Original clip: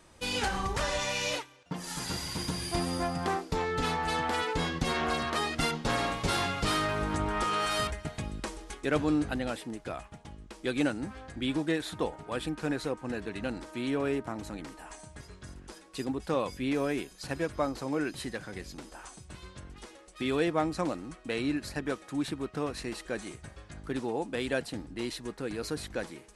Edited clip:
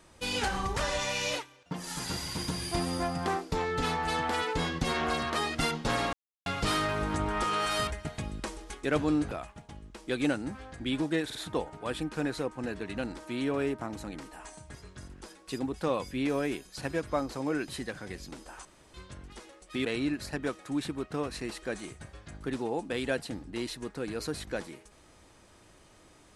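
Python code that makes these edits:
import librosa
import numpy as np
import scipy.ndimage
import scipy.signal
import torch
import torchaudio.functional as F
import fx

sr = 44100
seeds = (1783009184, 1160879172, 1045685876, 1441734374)

y = fx.edit(x, sr, fx.silence(start_s=6.13, length_s=0.33),
    fx.cut(start_s=9.31, length_s=0.56),
    fx.stutter(start_s=11.81, slice_s=0.05, count=3),
    fx.room_tone_fill(start_s=19.11, length_s=0.29),
    fx.cut(start_s=20.31, length_s=0.97), tone=tone)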